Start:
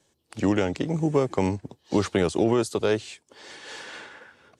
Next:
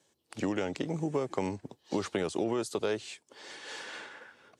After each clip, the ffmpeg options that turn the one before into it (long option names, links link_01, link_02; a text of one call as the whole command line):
ffmpeg -i in.wav -af "acompressor=threshold=-25dB:ratio=2.5,highpass=frequency=190:poles=1,volume=-2.5dB" out.wav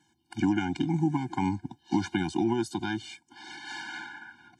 ffmpeg -i in.wav -af "highshelf=frequency=6500:gain=-11.5,afftfilt=real='re*eq(mod(floor(b*sr/1024/350),2),0)':imag='im*eq(mod(floor(b*sr/1024/350),2),0)':win_size=1024:overlap=0.75,volume=7.5dB" out.wav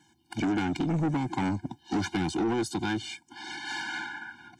ffmpeg -i in.wav -af "asoftclip=type=tanh:threshold=-28.5dB,volume=5dB" out.wav